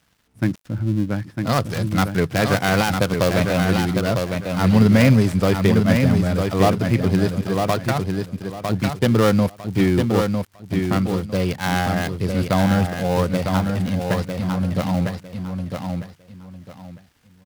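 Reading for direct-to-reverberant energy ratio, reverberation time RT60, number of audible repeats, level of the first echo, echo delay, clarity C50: none, none, 3, -5.0 dB, 0.953 s, none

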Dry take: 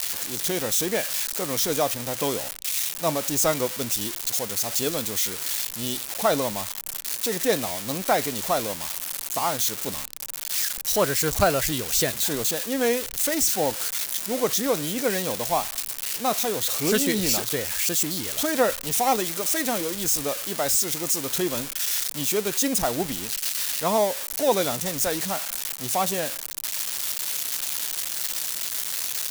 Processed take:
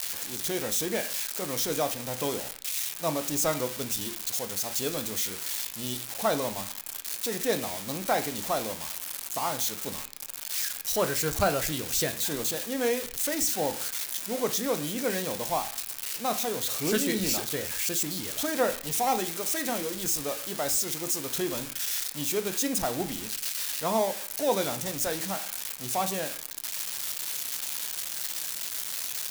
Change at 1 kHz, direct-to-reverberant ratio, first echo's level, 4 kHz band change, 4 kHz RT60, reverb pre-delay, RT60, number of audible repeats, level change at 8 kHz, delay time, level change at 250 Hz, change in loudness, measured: -4.5 dB, 8.0 dB, none, -4.5 dB, 0.50 s, 12 ms, 0.55 s, none, -5.0 dB, none, -4.0 dB, -5.0 dB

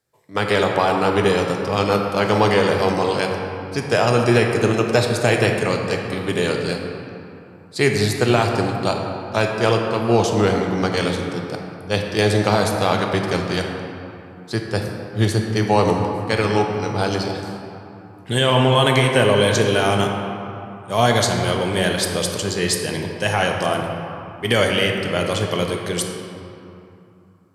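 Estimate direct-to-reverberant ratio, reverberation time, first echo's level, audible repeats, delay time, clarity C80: 1.5 dB, 2.9 s, none, none, none, 4.0 dB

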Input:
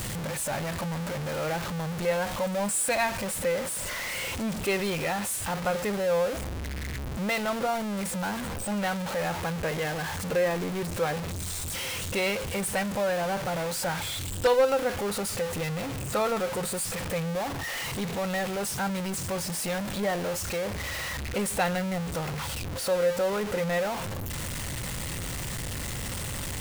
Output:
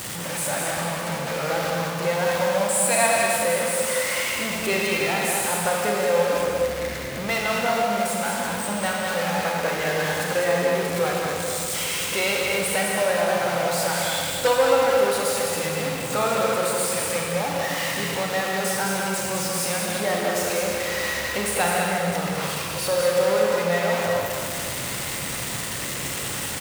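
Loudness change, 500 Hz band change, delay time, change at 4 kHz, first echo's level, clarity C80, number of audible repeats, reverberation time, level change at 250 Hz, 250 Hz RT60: +6.5 dB, +6.0 dB, 0.203 s, +7.5 dB, -4.0 dB, -1.5 dB, 1, 2.5 s, +2.0 dB, 2.9 s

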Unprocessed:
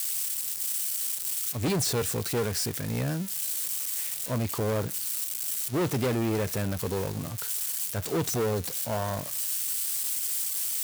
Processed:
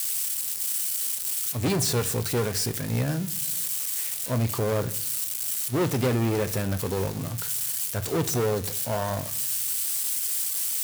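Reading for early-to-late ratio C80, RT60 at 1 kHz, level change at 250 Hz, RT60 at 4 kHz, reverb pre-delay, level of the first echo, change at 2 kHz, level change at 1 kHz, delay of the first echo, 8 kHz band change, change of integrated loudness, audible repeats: 21.5 dB, 0.60 s, +2.0 dB, 0.40 s, 8 ms, none, +2.5 dB, +2.5 dB, none, +2.5 dB, +2.5 dB, none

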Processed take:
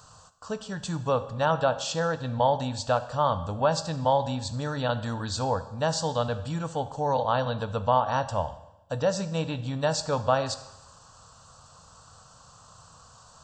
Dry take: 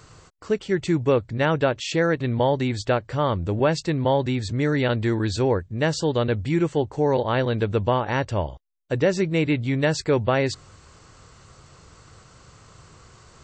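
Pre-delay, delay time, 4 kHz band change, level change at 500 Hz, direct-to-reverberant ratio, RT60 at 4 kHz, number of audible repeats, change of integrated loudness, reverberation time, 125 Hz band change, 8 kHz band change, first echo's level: 12 ms, none, -2.0 dB, -5.0 dB, 11.0 dB, 0.95 s, none, -4.5 dB, 0.95 s, -6.5 dB, +1.0 dB, none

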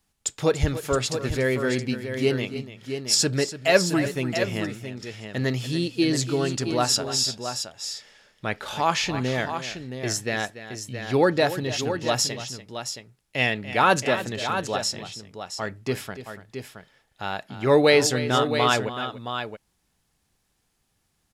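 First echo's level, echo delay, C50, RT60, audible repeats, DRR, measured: -13.5 dB, 0.289 s, none, none, 2, none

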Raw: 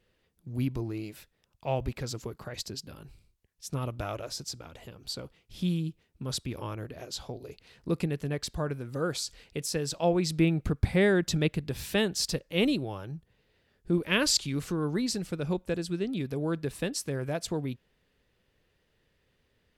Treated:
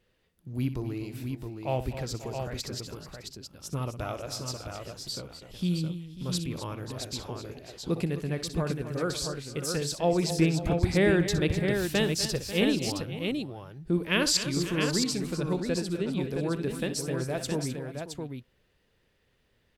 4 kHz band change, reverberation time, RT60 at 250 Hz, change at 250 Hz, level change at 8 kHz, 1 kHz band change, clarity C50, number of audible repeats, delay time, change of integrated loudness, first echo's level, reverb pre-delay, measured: +1.5 dB, none, none, +1.5 dB, +1.5 dB, +1.5 dB, none, 4, 62 ms, +1.0 dB, -12.5 dB, none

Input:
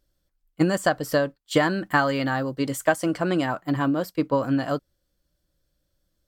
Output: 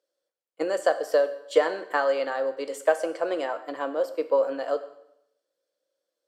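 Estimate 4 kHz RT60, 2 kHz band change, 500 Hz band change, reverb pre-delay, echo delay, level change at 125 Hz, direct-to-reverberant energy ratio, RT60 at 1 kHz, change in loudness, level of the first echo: 0.75 s, -5.5 dB, +2.0 dB, 5 ms, none, under -30 dB, 10.0 dB, 0.80 s, -2.0 dB, none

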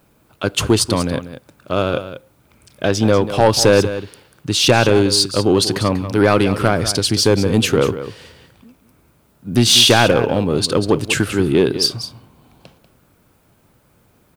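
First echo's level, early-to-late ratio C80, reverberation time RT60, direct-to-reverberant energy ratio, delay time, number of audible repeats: -12.0 dB, none, none, none, 0.191 s, 1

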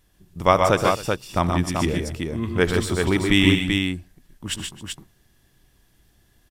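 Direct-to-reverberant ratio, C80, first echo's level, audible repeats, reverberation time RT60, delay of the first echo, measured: none, none, -18.0 dB, 4, none, 75 ms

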